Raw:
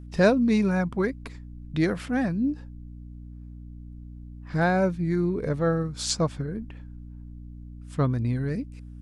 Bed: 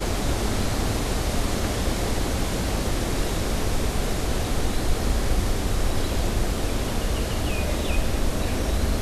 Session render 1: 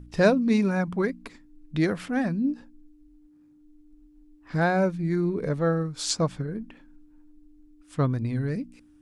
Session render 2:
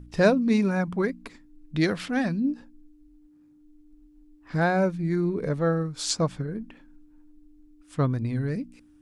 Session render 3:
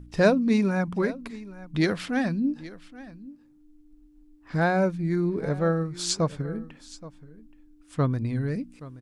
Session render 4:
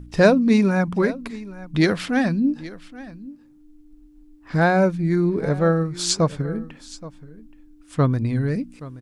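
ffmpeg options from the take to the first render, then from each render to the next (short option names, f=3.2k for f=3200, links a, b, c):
-af "bandreject=f=60:t=h:w=4,bandreject=f=120:t=h:w=4,bandreject=f=180:t=h:w=4,bandreject=f=240:t=h:w=4"
-filter_complex "[0:a]asettb=1/sr,asplit=3[a][b][c];[a]atrim=end=1.814[d];[b]atrim=start=1.81:end=2.4,asetpts=PTS-STARTPTS,afade=t=in:d=0.004:c=qsin,afade=t=out:st=0.586:d=0.004:c=qsin,equalizer=f=4k:w=0.82:g=7.5[e];[c]atrim=start=2.396[f];[d][e]acrossfade=d=0.004:c1=hsin:c2=qsin[g];[g][f]acrossfade=d=0.004:c1=qsin:c2=hsin"
-af "aecho=1:1:825:0.126"
-af "volume=5.5dB,alimiter=limit=-3dB:level=0:latency=1"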